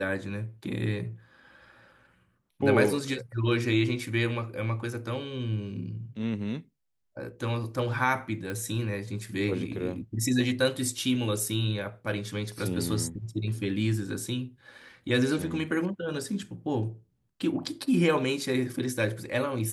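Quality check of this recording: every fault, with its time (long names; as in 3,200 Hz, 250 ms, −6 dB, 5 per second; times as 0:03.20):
0:08.50: click −21 dBFS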